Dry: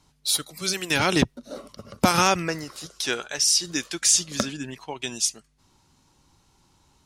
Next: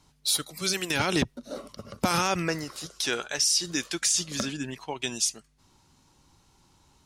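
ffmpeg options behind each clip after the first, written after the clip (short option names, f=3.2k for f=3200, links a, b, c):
-af "alimiter=limit=-14dB:level=0:latency=1:release=44"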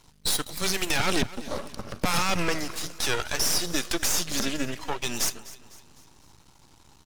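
-af "aeval=exprs='max(val(0),0)':c=same,alimiter=limit=-20.5dB:level=0:latency=1:release=63,aecho=1:1:252|504|756|1008:0.126|0.0579|0.0266|0.0123,volume=9dB"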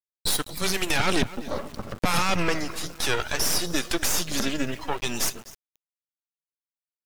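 -af "afftdn=nr=13:nf=-45,equalizer=f=6k:t=o:w=1.1:g=-3,aeval=exprs='val(0)*gte(abs(val(0)),0.00841)':c=same,volume=2dB"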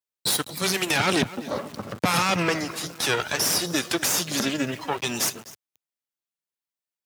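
-af "highpass=f=100:w=0.5412,highpass=f=100:w=1.3066,volume=2dB"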